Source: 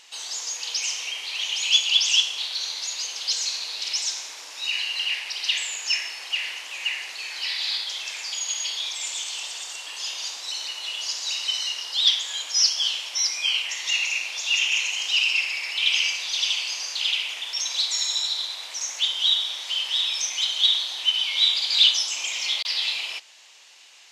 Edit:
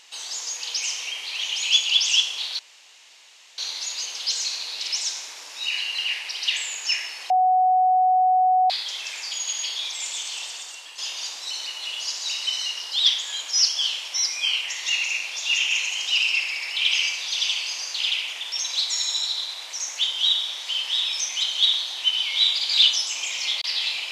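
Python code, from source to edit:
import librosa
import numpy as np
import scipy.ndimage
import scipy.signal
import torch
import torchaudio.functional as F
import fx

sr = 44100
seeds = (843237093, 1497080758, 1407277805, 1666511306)

y = fx.edit(x, sr, fx.insert_room_tone(at_s=2.59, length_s=0.99),
    fx.bleep(start_s=6.31, length_s=1.4, hz=742.0, db=-15.0),
    fx.fade_out_to(start_s=9.46, length_s=0.53, floor_db=-7.5), tone=tone)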